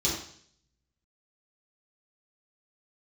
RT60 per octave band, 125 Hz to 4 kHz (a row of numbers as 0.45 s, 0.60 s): 0.90 s, 0.65 s, 0.60 s, 0.55 s, 0.60 s, 0.70 s